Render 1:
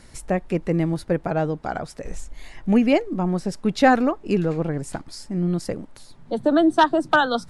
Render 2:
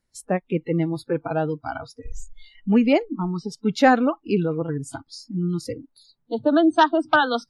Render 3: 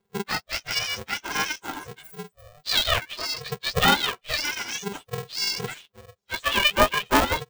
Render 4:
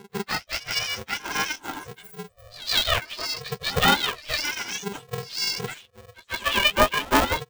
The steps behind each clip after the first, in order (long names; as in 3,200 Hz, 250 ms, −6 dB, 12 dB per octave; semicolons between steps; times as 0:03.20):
noise reduction from a noise print of the clip's start 29 dB
frequency axis turned over on the octave scale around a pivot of 930 Hz; ring modulator with a square carrier 300 Hz
echo ahead of the sound 154 ms −18.5 dB